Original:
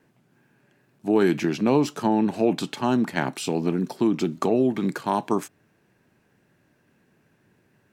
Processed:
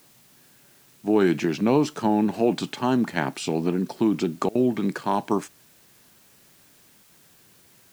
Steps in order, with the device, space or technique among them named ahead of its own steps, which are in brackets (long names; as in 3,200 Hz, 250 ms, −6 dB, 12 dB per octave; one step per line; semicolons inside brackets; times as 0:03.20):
worn cassette (low-pass filter 9,300 Hz; tape wow and flutter; tape dropouts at 0:04.49/0:07.03, 61 ms −23 dB; white noise bed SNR 31 dB)